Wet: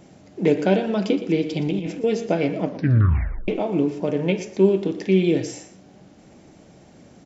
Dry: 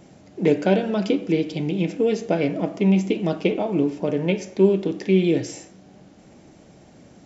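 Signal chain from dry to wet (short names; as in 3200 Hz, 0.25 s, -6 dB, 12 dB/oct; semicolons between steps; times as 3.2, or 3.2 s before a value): 1.49–2.04 negative-ratio compressor -24 dBFS, ratio -0.5; 2.62 tape stop 0.86 s; echo 0.118 s -14 dB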